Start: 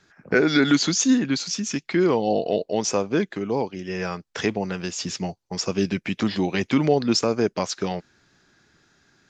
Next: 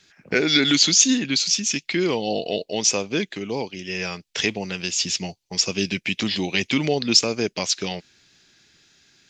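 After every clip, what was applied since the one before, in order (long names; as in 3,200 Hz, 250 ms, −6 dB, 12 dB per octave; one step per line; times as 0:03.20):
high shelf with overshoot 1,900 Hz +9.5 dB, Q 1.5
level −2.5 dB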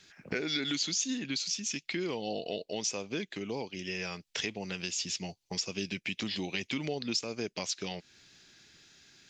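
downward compressor 2.5 to 1, threshold −35 dBFS, peak gain reduction 16 dB
level −1.5 dB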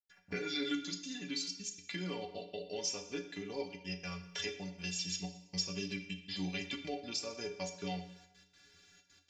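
gate pattern ".x.xxxxx" 160 BPM −60 dB
stiff-string resonator 85 Hz, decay 0.38 s, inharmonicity 0.03
dense smooth reverb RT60 0.85 s, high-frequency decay 0.95×, DRR 7 dB
level +5.5 dB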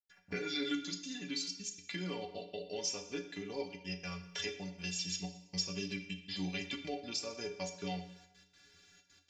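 no processing that can be heard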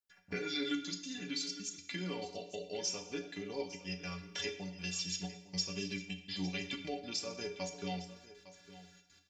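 single-tap delay 857 ms −16 dB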